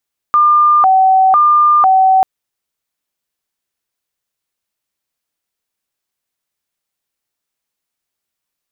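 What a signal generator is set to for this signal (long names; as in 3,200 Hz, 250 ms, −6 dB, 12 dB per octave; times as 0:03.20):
siren hi-lo 760–1,200 Hz 1 per second sine −6 dBFS 1.89 s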